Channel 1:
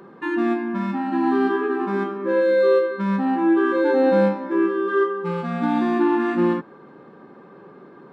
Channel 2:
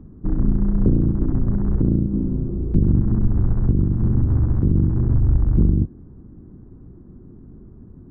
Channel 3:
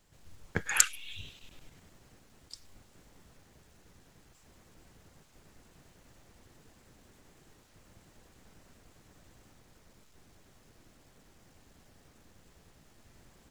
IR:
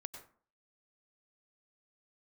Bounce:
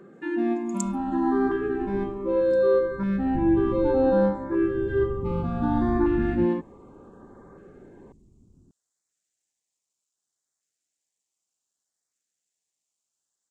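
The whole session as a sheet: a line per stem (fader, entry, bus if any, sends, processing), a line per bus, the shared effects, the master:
-3.0 dB, 0.00 s, no send, none
-14.5 dB, 0.60 s, no send, auto duck -14 dB, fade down 0.55 s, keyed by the third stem
0.0 dB, 0.00 s, no send, band-pass filter 7.4 kHz, Q 3.2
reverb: none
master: treble shelf 3.1 kHz -10.5 dB; LFO notch saw up 0.66 Hz 890–3000 Hz

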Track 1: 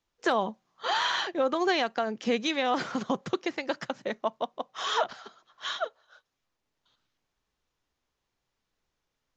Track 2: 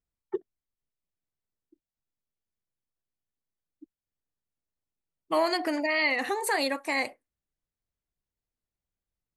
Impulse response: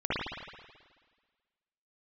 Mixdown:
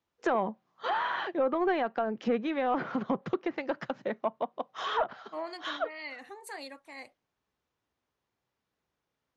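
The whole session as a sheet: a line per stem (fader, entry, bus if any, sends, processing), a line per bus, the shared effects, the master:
+0.5 dB, 0.00 s, no send, high-pass 79 Hz; treble shelf 3.2 kHz -9.5 dB; saturation -18 dBFS, distortion -20 dB
-17.0 dB, 0.00 s, no send, three bands expanded up and down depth 100%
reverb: none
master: low-pass that closes with the level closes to 2 kHz, closed at -26.5 dBFS

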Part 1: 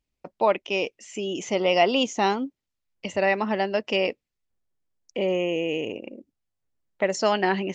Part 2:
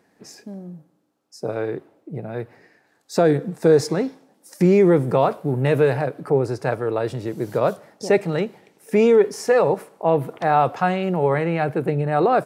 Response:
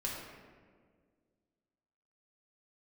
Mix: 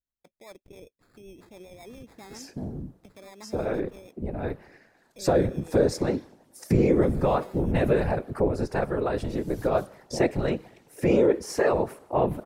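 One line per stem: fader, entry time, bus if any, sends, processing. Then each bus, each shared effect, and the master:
-17.0 dB, 0.00 s, no send, peak limiter -18.5 dBFS, peak gain reduction 10.5 dB; sample-and-hold 15×; rotary cabinet horn 7.5 Hz
-1.0 dB, 2.10 s, no send, whisper effect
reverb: none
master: bass shelf 160 Hz +3.5 dB; compression 1.5:1, threshold -27 dBFS, peak gain reduction 6.5 dB

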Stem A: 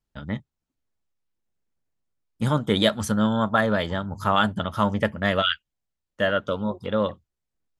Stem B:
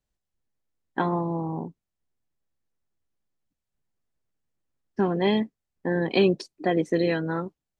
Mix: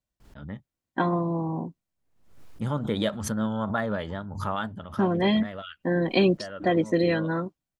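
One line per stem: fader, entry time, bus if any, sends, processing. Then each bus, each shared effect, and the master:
-9.5 dB, 0.20 s, no send, treble shelf 2.5 kHz -8.5 dB; vibrato 2.3 Hz 52 cents; swell ahead of each attack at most 70 dB/s; auto duck -9 dB, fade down 0.55 s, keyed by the second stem
-2.0 dB, 0.00 s, no send, comb of notches 430 Hz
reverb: none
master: level rider gain up to 3.5 dB

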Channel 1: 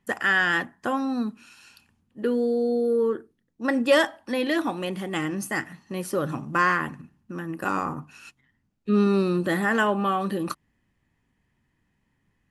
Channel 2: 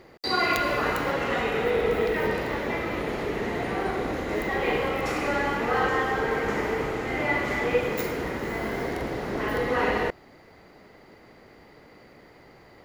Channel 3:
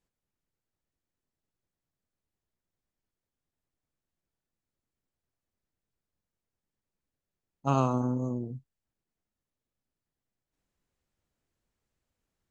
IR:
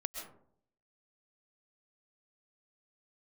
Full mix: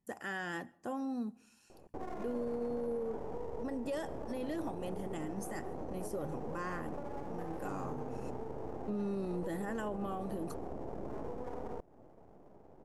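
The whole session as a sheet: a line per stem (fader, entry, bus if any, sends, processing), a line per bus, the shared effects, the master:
-11.0 dB, 0.00 s, send -22 dB, none
-1.0 dB, 1.70 s, no send, low-pass 1.1 kHz 24 dB/octave; compression 6:1, threshold -33 dBFS, peak gain reduction 14 dB; half-wave rectifier
-18.0 dB, 0.00 s, no send, none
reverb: on, RT60 0.60 s, pre-delay 90 ms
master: high-order bell 2.2 kHz -9 dB 2.3 oct; peak limiter -30 dBFS, peak gain reduction 10.5 dB

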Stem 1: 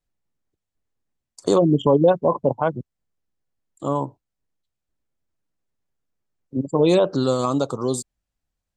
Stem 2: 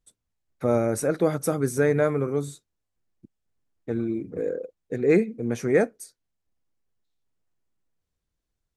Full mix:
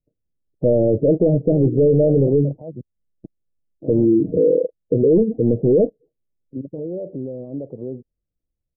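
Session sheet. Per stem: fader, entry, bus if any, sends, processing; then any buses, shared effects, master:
-2.5 dB, 0.00 s, no send, peak limiter -17.5 dBFS, peak gain reduction 11.5 dB
+3.0 dB, 0.00 s, no send, waveshaping leveller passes 3; comb 6.4 ms, depth 31%; spectral gate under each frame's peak -25 dB strong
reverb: none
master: steep low-pass 620 Hz 48 dB/octave; peak limiter -8 dBFS, peak gain reduction 6.5 dB

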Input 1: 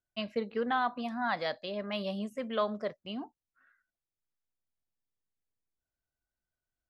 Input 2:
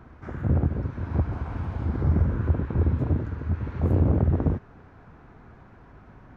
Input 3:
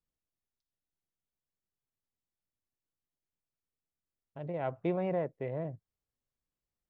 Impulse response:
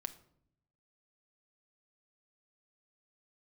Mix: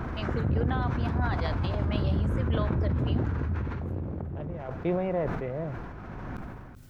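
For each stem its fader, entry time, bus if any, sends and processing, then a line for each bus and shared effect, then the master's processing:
-1.5 dB, 0.00 s, no send, no echo send, compression 2:1, threshold -32 dBFS, peak gain reduction 4.5 dB
-9.5 dB, 0.00 s, send -10 dB, echo send -21.5 dB, level flattener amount 70%; auto duck -17 dB, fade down 0.95 s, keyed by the third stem
+1.0 dB, 0.00 s, send -12 dB, no echo send, square tremolo 0.64 Hz, depth 65%, duty 85%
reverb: on, RT60 0.70 s, pre-delay 6 ms
echo: delay 383 ms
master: decay stretcher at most 31 dB/s

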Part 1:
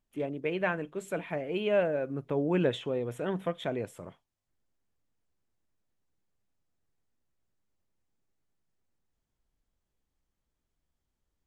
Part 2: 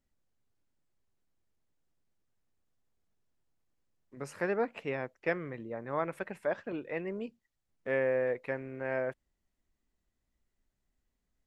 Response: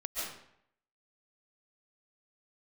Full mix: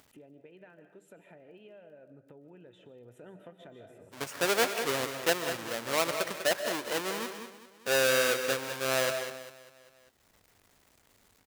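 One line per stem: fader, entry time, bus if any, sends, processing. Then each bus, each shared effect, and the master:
2.88 s -21 dB -> 3.41 s -8 dB, 0.00 s, send -11.5 dB, no echo send, compression 5:1, threshold -33 dBFS, peak gain reduction 11 dB; comb of notches 1.1 kHz; auto duck -17 dB, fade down 1.10 s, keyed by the second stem
+2.5 dB, 0.00 s, send -11.5 dB, echo send -8 dB, square wave that keeps the level; high-pass 800 Hz 6 dB/octave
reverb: on, RT60 0.70 s, pre-delay 100 ms
echo: feedback delay 198 ms, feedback 39%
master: peaking EQ 99 Hz +9 dB 0.4 oct; upward compressor, threshold -47 dBFS

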